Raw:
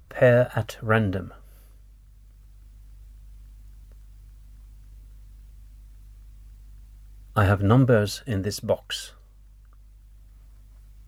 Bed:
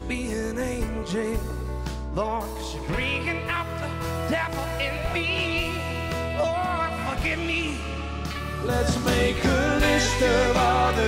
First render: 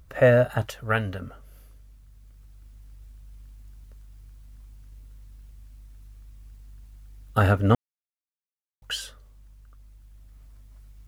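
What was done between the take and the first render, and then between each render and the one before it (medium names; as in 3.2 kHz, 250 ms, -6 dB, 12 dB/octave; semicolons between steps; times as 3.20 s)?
0.64–1.20 s: peaking EQ 270 Hz -3.5 dB -> -11 dB 2.7 oct; 7.75–8.82 s: mute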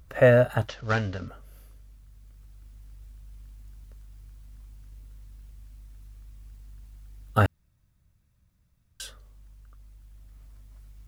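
0.68–1.28 s: CVSD coder 32 kbps; 7.46–9.00 s: room tone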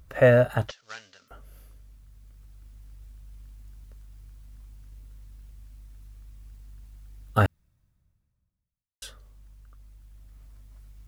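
0.71–1.31 s: differentiator; 7.42–9.02 s: studio fade out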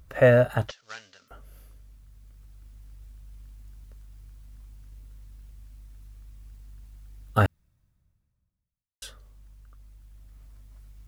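no audible change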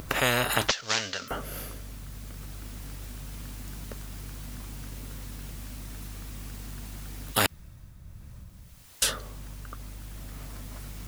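upward compressor, threshold -53 dBFS; spectrum-flattening compressor 4:1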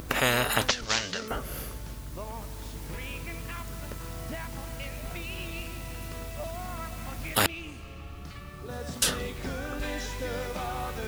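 add bed -14 dB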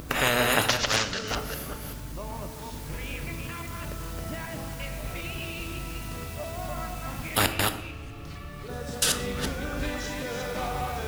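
chunks repeated in reverse 193 ms, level -2.5 dB; simulated room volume 260 m³, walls mixed, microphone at 0.4 m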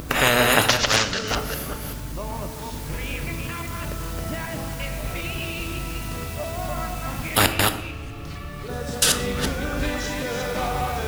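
trim +5.5 dB; peak limiter -2 dBFS, peak gain reduction 1 dB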